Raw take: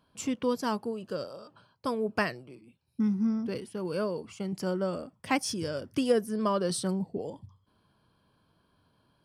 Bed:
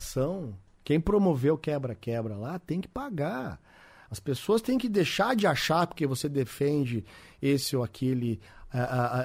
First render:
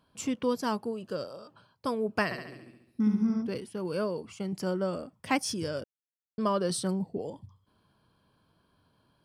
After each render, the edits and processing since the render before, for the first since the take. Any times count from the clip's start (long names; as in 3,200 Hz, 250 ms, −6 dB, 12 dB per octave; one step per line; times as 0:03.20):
0:02.24–0:03.42: flutter between parallel walls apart 12 metres, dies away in 0.82 s
0:05.84–0:06.38: silence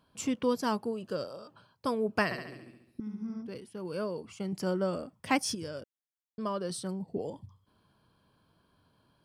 0:03.00–0:04.72: fade in, from −16 dB
0:05.55–0:07.08: clip gain −6 dB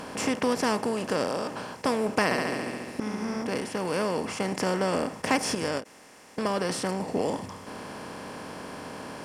compressor on every frequency bin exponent 0.4
every ending faded ahead of time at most 290 dB per second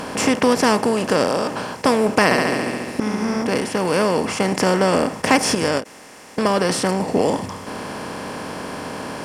level +9.5 dB
brickwall limiter −2 dBFS, peak gain reduction 1.5 dB